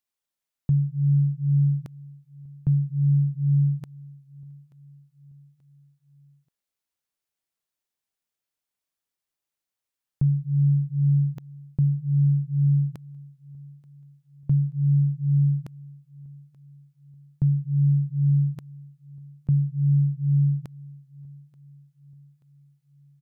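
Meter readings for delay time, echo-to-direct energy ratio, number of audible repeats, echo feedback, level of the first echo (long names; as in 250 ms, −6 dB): 882 ms, −22.0 dB, 2, 47%, −23.0 dB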